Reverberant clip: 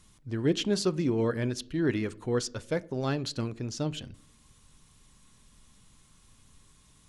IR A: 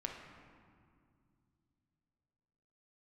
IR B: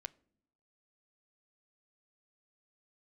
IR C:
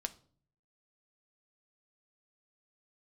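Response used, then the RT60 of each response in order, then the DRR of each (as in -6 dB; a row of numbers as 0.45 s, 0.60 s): B; 2.2 s, no single decay rate, 0.50 s; 0.0 dB, 15.0 dB, 6.0 dB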